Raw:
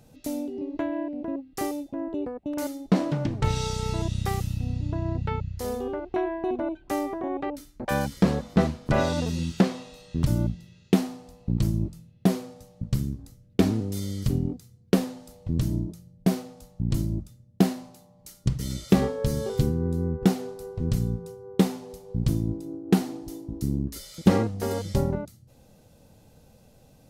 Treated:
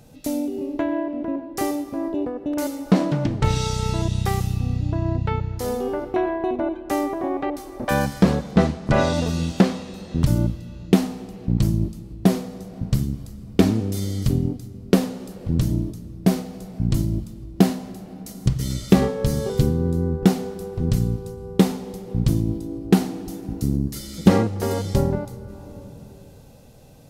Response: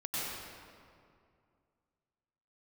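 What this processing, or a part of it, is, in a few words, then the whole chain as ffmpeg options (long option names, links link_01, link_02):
compressed reverb return: -filter_complex "[0:a]asplit=2[link_01][link_02];[1:a]atrim=start_sample=2205[link_03];[link_02][link_03]afir=irnorm=-1:irlink=0,acompressor=threshold=-29dB:ratio=6,volume=-8.5dB[link_04];[link_01][link_04]amix=inputs=2:normalize=0,asettb=1/sr,asplit=3[link_05][link_06][link_07];[link_05]atrim=end=8.514[link_08];[link_06]atrim=start=8.51:end=9.14,asetpts=PTS-STARTPTS,afade=type=in:duration=0.004:curve=qsin,afade=type=out:start_time=0.626:duration=0.004:curve=qsin,lowpass=9900[link_09];[link_07]atrim=start=9.136[link_10];[link_08][link_09]acrossfade=duration=0.004:curve1=hsin:curve2=qsin[link_11];[link_11][link_10]acrossfade=duration=0.004:curve1=qsin:curve2=hsin,volume=4dB"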